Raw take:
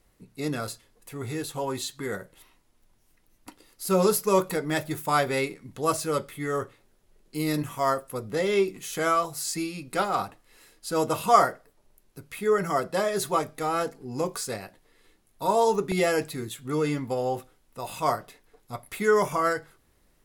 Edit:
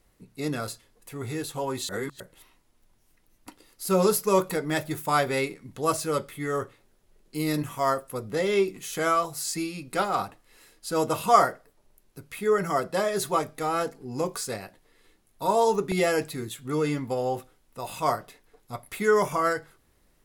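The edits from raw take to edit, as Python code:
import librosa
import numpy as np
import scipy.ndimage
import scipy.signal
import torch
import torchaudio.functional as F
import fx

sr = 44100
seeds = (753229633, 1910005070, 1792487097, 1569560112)

y = fx.edit(x, sr, fx.reverse_span(start_s=1.89, length_s=0.31), tone=tone)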